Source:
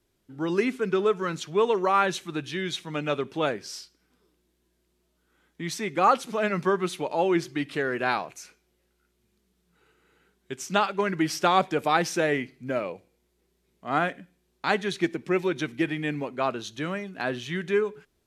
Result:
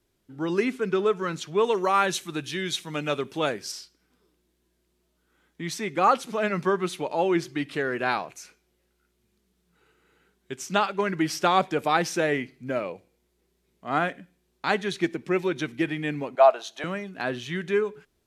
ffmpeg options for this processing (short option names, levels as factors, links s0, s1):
-filter_complex "[0:a]asettb=1/sr,asplit=3[s0][s1][s2];[s0]atrim=end=1.644[s3];[s1]atrim=start=1.64:end=3.72,asetpts=PTS-STARTPTS,afade=t=in:d=0.004:c=qsin,afade=t=out:st=2.076:d=0.004:c=qsin,aemphasis=mode=production:type=cd[s4];[s2]atrim=start=3.716[s5];[s3][s4]acrossfade=d=0.004:c1=hsin:c2=qsin[s6];[s6][s5]acrossfade=d=0.004:c1=qsin:c2=hsin,asettb=1/sr,asplit=3[s7][s8][s9];[s7]atrim=end=16.354[s10];[s8]atrim=start=16.35:end=16.84,asetpts=PTS-STARTPTS,afade=t=in:d=0.004:c=qsin,afade=t=out:st=0.486:d=0.004:c=qsin,highpass=f=690:t=q:w=5.4[s11];[s9]atrim=start=16.836[s12];[s10][s11]acrossfade=d=0.004:c1=hsin:c2=qsin[s13];[s13][s12]acrossfade=d=0.004:c1=qsin:c2=hsin"